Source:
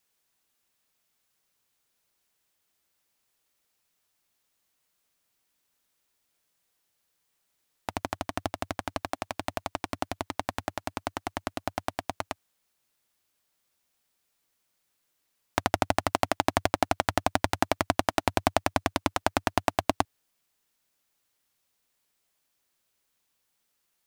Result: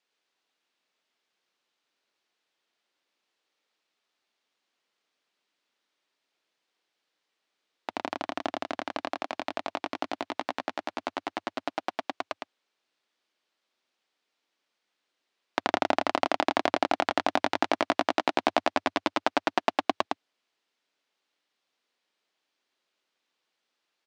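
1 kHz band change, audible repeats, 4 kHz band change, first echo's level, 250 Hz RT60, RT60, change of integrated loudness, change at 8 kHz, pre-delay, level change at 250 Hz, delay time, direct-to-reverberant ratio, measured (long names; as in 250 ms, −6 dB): +0.5 dB, 1, +1.0 dB, −3.5 dB, no reverb audible, no reverb audible, +0.5 dB, −9.0 dB, no reverb audible, −0.5 dB, 110 ms, no reverb audible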